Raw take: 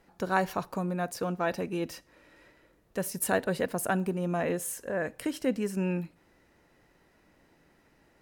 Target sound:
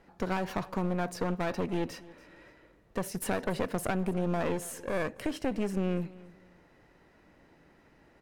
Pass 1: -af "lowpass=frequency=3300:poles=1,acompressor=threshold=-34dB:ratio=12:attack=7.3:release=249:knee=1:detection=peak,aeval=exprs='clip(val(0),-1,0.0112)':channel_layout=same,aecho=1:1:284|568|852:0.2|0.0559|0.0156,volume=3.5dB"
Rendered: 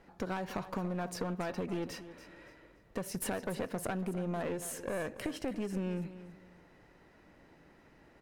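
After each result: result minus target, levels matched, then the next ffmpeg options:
downward compressor: peak gain reduction +7 dB; echo-to-direct +6.5 dB
-af "lowpass=frequency=3300:poles=1,acompressor=threshold=-26.5dB:ratio=12:attack=7.3:release=249:knee=1:detection=peak,aeval=exprs='clip(val(0),-1,0.0112)':channel_layout=same,aecho=1:1:284|568|852:0.2|0.0559|0.0156,volume=3.5dB"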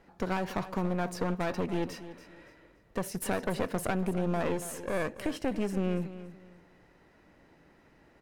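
echo-to-direct +6.5 dB
-af "lowpass=frequency=3300:poles=1,acompressor=threshold=-26.5dB:ratio=12:attack=7.3:release=249:knee=1:detection=peak,aeval=exprs='clip(val(0),-1,0.0112)':channel_layout=same,aecho=1:1:284|568:0.0944|0.0264,volume=3.5dB"

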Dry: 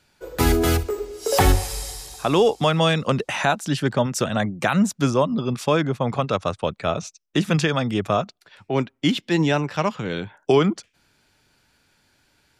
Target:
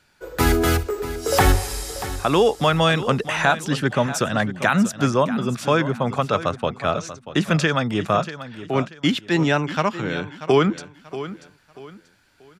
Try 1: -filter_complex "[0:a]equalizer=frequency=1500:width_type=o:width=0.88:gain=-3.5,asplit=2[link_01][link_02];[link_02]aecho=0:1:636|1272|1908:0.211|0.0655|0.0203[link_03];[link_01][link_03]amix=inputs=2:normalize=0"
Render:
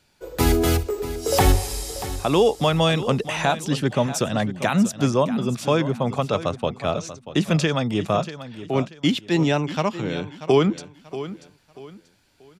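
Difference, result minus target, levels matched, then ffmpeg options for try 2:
2,000 Hz band −5.0 dB
-filter_complex "[0:a]equalizer=frequency=1500:width_type=o:width=0.88:gain=5,asplit=2[link_01][link_02];[link_02]aecho=0:1:636|1272|1908:0.211|0.0655|0.0203[link_03];[link_01][link_03]amix=inputs=2:normalize=0"

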